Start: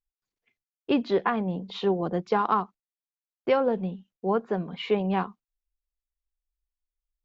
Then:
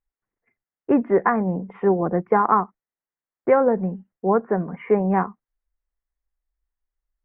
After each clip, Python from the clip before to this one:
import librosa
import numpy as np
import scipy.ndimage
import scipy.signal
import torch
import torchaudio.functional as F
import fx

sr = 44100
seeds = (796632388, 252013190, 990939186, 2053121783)

y = scipy.signal.sosfilt(scipy.signal.ellip(4, 1.0, 50, 2000.0, 'lowpass', fs=sr, output='sos'), x)
y = y * librosa.db_to_amplitude(6.5)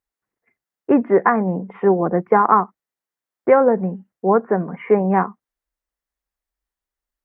y = fx.highpass(x, sr, hz=140.0, slope=6)
y = y * librosa.db_to_amplitude(4.0)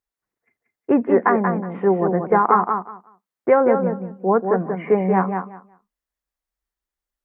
y = fx.echo_feedback(x, sr, ms=183, feedback_pct=18, wet_db=-6)
y = y * librosa.db_to_amplitude(-2.0)